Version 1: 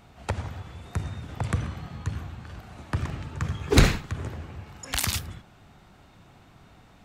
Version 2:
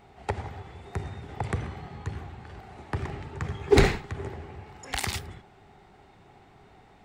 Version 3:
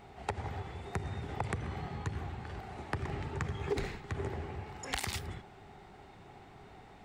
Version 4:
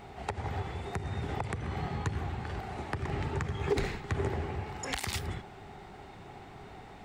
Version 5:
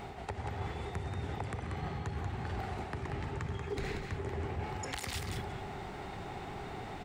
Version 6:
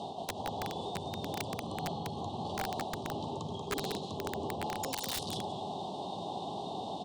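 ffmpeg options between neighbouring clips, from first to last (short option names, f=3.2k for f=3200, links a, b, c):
-af "equalizer=f=400:t=o:w=0.33:g=12,equalizer=f=800:t=o:w=0.33:g=10,equalizer=f=2k:t=o:w=0.33:g=6,equalizer=f=6.3k:t=o:w=0.33:g=-3,equalizer=f=12.5k:t=o:w=0.33:g=-11,volume=-4dB"
-af "acompressor=threshold=-32dB:ratio=20,volume=1dB"
-af "alimiter=limit=-24dB:level=0:latency=1:release=292,volume=5.5dB"
-af "areverse,acompressor=threshold=-41dB:ratio=6,areverse,aecho=1:1:185:0.501,volume=5dB"
-af "asuperstop=centerf=1800:order=12:qfactor=0.94,highpass=f=130:w=0.5412,highpass=f=130:w=1.3066,equalizer=f=130:t=q:w=4:g=-9,equalizer=f=390:t=q:w=4:g=-4,equalizer=f=620:t=q:w=4:g=5,equalizer=f=3.8k:t=q:w=4:g=6,equalizer=f=7.4k:t=q:w=4:g=-4,lowpass=f=9.5k:w=0.5412,lowpass=f=9.5k:w=1.3066,aeval=exprs='(mod(39.8*val(0)+1,2)-1)/39.8':c=same,volume=5dB"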